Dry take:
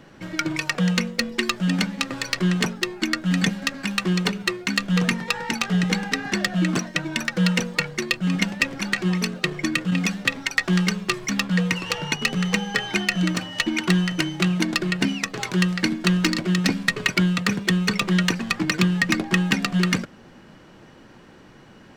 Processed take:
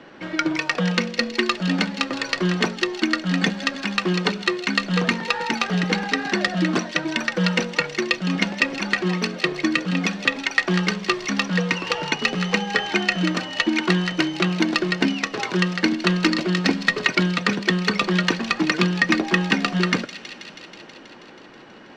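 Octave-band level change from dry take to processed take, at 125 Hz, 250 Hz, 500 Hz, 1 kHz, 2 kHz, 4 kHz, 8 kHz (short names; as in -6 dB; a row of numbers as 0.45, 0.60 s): -2.0, 0.0, +4.5, +4.5, +2.0, +1.5, -3.5 dB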